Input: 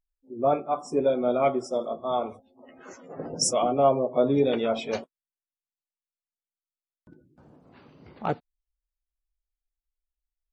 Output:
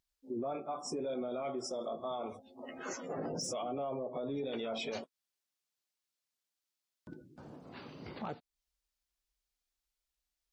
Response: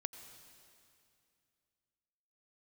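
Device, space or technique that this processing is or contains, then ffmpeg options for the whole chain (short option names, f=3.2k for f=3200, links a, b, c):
broadcast voice chain: -af "highpass=f=97:p=1,deesser=0.6,acompressor=threshold=-38dB:ratio=3,equalizer=f=4.8k:t=o:w=1.5:g=6,alimiter=level_in=10.5dB:limit=-24dB:level=0:latency=1:release=16,volume=-10.5dB,volume=4dB"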